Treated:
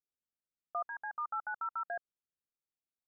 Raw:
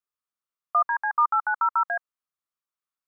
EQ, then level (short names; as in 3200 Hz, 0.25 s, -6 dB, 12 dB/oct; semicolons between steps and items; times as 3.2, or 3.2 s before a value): running mean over 43 samples; 0.0 dB